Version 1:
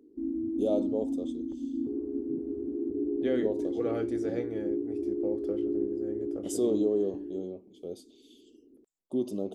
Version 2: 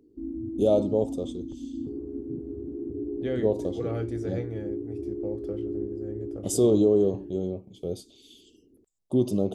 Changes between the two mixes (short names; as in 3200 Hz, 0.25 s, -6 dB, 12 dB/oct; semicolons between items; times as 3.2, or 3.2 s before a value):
first voice +8.0 dB; master: add resonant low shelf 180 Hz +9.5 dB, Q 1.5